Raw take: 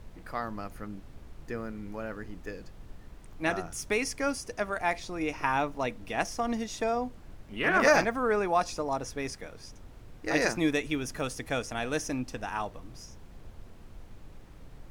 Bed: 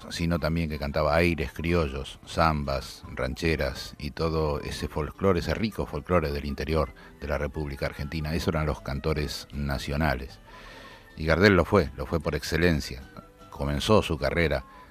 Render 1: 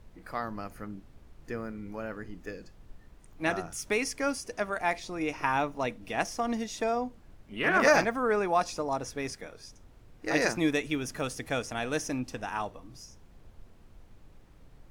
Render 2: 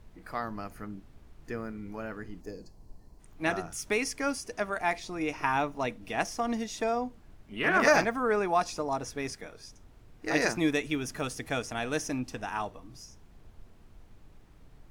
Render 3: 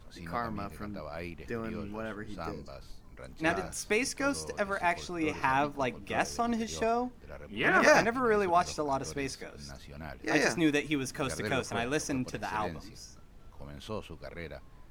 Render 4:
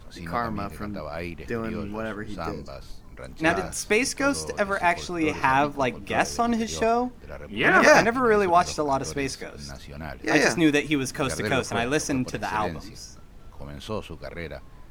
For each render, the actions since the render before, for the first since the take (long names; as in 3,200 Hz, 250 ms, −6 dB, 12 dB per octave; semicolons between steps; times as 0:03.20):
noise reduction from a noise print 6 dB
notch filter 530 Hz, Q 12; 0:02.41–0:03.20: gain on a spectral selection 1,100–4,000 Hz −12 dB
mix in bed −18 dB
level +7 dB; brickwall limiter −2 dBFS, peak gain reduction 1.5 dB